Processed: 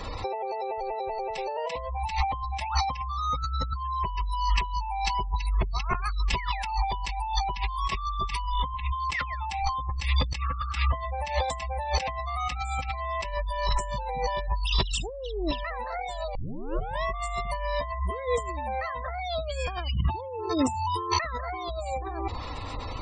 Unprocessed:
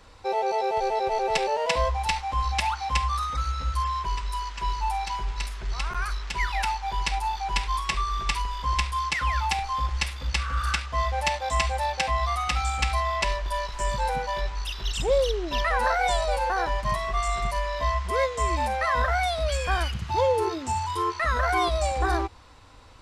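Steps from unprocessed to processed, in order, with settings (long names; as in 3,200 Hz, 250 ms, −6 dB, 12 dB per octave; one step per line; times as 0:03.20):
notch filter 1,500 Hz, Q 5.2
gate on every frequency bin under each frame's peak −25 dB strong
compressor whose output falls as the input rises −37 dBFS, ratio −1
0:08.52–0:09.00: linear-phase brick-wall low-pass 4,200 Hz
0:16.35: tape start 0.68 s
level +7 dB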